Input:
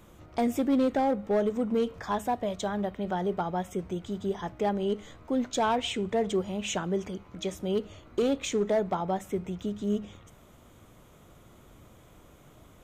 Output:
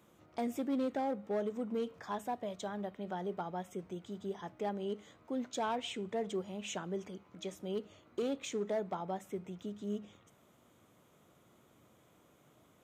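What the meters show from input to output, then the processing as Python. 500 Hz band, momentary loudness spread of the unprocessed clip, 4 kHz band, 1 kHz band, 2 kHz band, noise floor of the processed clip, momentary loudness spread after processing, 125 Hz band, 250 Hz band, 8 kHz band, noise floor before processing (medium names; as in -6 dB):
-9.0 dB, 8 LU, -9.0 dB, -9.0 dB, -9.0 dB, -67 dBFS, 8 LU, -10.5 dB, -9.5 dB, -9.0 dB, -55 dBFS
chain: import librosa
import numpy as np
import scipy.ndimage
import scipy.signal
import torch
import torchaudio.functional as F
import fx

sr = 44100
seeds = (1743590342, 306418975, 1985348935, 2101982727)

y = scipy.signal.sosfilt(scipy.signal.butter(2, 140.0, 'highpass', fs=sr, output='sos'), x)
y = y * librosa.db_to_amplitude(-9.0)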